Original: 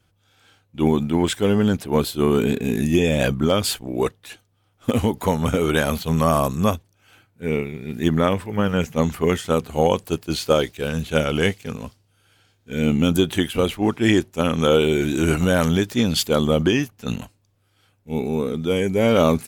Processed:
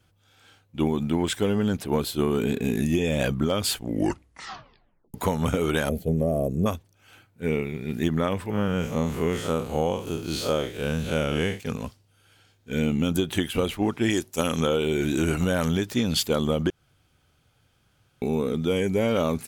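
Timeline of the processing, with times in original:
3.77 tape stop 1.37 s
5.89–6.66 EQ curve 250 Hz 0 dB, 430 Hz +5 dB, 680 Hz 0 dB, 980 Hz -28 dB, 2000 Hz -16 dB, 3800 Hz -24 dB, 7300 Hz -15 dB, 11000 Hz -9 dB
8.5–11.6 time blur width 0.108 s
14.1–14.6 tone controls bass -3 dB, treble +10 dB
16.7–18.22 room tone
whole clip: compressor, threshold -20 dBFS

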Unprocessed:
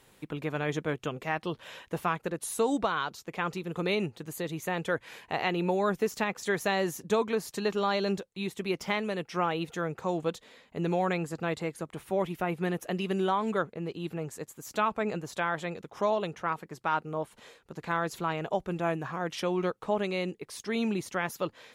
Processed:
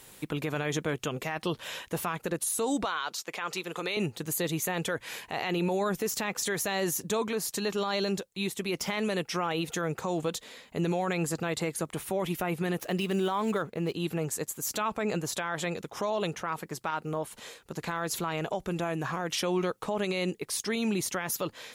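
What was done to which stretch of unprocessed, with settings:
2.85–3.97 weighting filter A
7.28–8.69 gain -3 dB
12.8–13.94 median filter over 5 samples
16.9–19.4 compressor 2.5:1, threshold -33 dBFS
whole clip: high shelf 4500 Hz +10.5 dB; limiter -25.5 dBFS; gain +4.5 dB

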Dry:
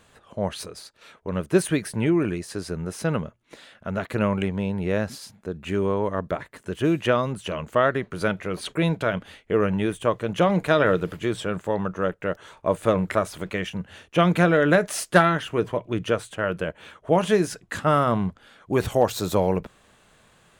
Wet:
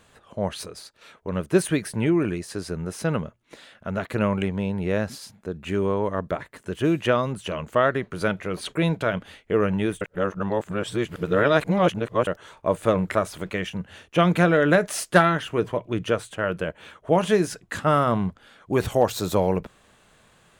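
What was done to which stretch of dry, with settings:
10.01–12.27 reverse

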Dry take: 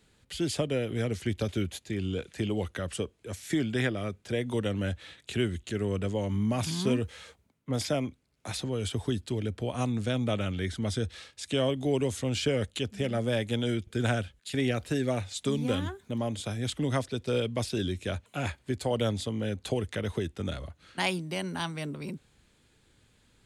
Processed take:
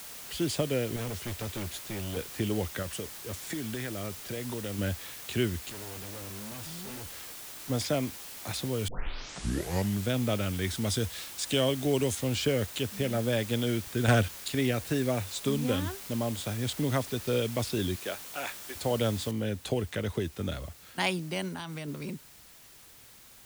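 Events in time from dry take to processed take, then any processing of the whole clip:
0.96–2.17 hard clip -33 dBFS
2.82–4.79 compressor, threshold -32 dBFS
5.7–7.7 tube stage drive 42 dB, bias 0.7
8.88 tape start 1.21 s
10.62–12.15 high shelf 3700 Hz +9 dB
14.08–14.48 sample leveller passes 2
17.95–18.75 HPF 330 Hz -> 760 Hz
19.31 noise floor step -44 dB -54 dB
21.48–21.88 compressor, threshold -34 dBFS

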